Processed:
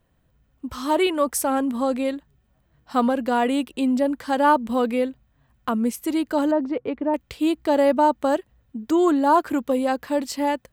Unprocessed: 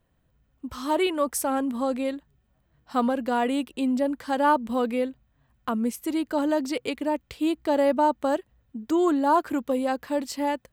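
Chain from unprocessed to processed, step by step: 6.51–7.14 LPF 1300 Hz 12 dB/oct; gain +3.5 dB

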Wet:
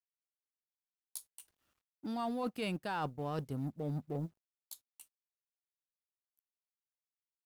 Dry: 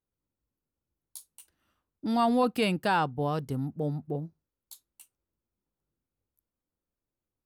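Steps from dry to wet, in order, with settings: G.711 law mismatch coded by A; reverse; compressor 10:1, threshold -37 dBFS, peak gain reduction 16 dB; reverse; gain +3 dB

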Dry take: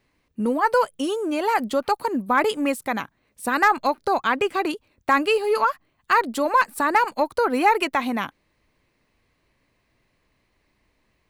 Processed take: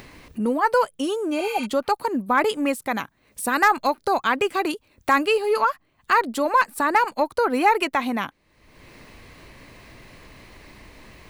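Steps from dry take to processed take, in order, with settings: 1.41–1.63 spectral repair 840–11000 Hz before; 2.91–5.26 high shelf 5600 Hz +5.5 dB; upward compressor, threshold -27 dBFS

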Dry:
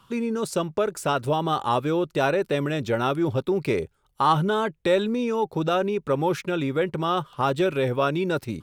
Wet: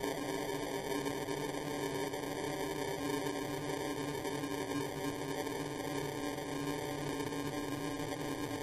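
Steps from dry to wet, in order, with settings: per-bin expansion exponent 3; in parallel at +2.5 dB: compressor 10:1, threshold -35 dBFS, peak gain reduction 17 dB; on the sum: limiter -22 dBFS, peak gain reduction 11.5 dB; notches 60/120/180/240 Hz; Paulstretch 45×, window 1.00 s, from 2.51; sample-and-hold 33×; gain -6 dB; MP3 56 kbps 48000 Hz

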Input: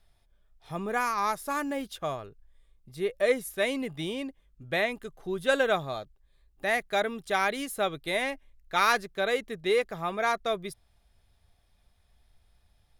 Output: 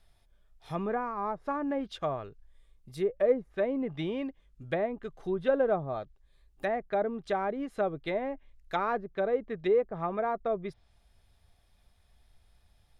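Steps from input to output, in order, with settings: treble ducked by the level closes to 740 Hz, closed at -26 dBFS; gain +1 dB

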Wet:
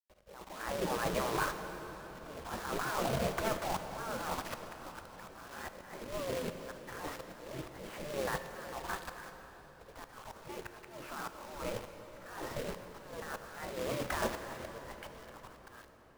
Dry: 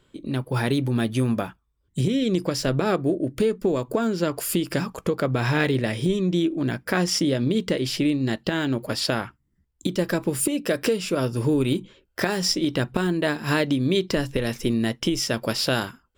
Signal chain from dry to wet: ending faded out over 1.22 s; expander -41 dBFS; LPF 1200 Hz 24 dB/oct; spectral gate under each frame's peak -20 dB weak; negative-ratio compressor -48 dBFS, ratio -1; companded quantiser 4-bit; pre-echo 48 ms -21.5 dB; auto swell 0.77 s; reverb RT60 4.9 s, pre-delay 13 ms, DRR 7 dB; gain +13.5 dB

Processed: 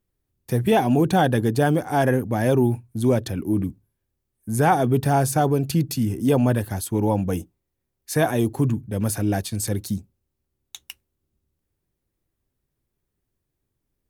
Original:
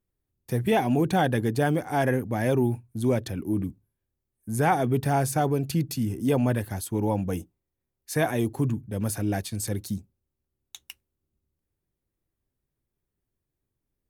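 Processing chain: dynamic EQ 2100 Hz, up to -6 dB, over -49 dBFS, Q 3.4; gain +4.5 dB

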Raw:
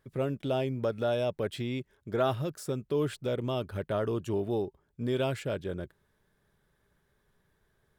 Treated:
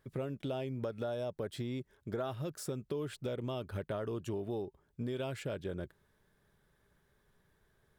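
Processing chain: 1.03–2.24 dynamic EQ 2600 Hz, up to -7 dB, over -55 dBFS, Q 2; compressor 5:1, threshold -35 dBFS, peak gain reduction 11.5 dB

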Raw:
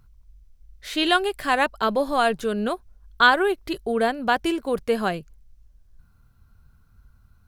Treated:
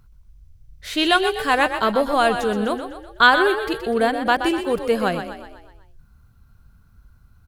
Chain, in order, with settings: frequency-shifting echo 0.124 s, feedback 51%, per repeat +32 Hz, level -9 dB; gain +2.5 dB

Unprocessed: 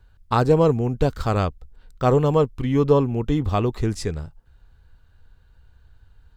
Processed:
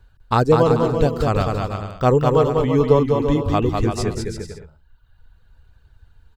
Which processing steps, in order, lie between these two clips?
reverb removal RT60 1.4 s; bouncing-ball echo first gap 0.2 s, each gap 0.7×, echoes 5; gain +2.5 dB

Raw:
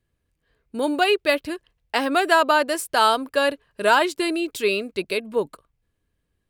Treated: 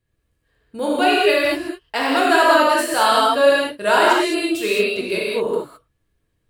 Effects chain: non-linear reverb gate 0.24 s flat, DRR -6 dB; gain -2.5 dB

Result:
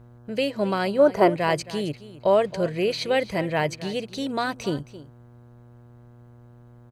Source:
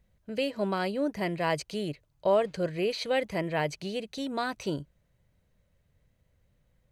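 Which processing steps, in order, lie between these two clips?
spectral gain 0.99–1.3, 340–1600 Hz +11 dB; echo 0.269 s -16.5 dB; buzz 120 Hz, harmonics 14, -54 dBFS -8 dB/oct; gain +5 dB

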